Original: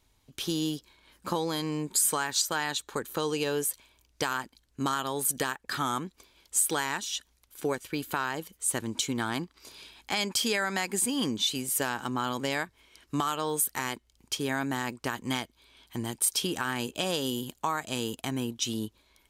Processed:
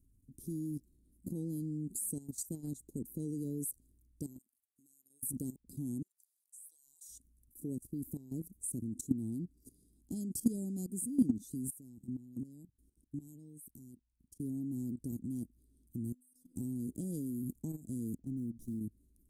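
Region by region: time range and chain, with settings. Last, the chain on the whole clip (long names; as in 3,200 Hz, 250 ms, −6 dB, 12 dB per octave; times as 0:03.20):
0:04.38–0:05.23: first difference + downward compressor 2.5 to 1, threshold −59 dBFS
0:06.02–0:07.09: high-pass filter 1,200 Hz 24 dB per octave + downward compressor 10 to 1, threshold −33 dBFS
0:11.70–0:14.40: parametric band 590 Hz −5 dB 1.3 octaves + output level in coarse steps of 21 dB
0:16.12–0:16.56: downward compressor 4 to 1, threshold −35 dBFS + stiff-string resonator 250 Hz, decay 0.43 s, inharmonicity 0.002
0:18.18–0:18.81: low-pass that shuts in the quiet parts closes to 1,700 Hz, open at −28.5 dBFS + downward compressor 3 to 1, threshold −39 dBFS + windowed peak hold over 3 samples
whole clip: elliptic band-stop filter 270–9,400 Hz, stop band 80 dB; high-shelf EQ 7,400 Hz −10.5 dB; output level in coarse steps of 15 dB; level +7 dB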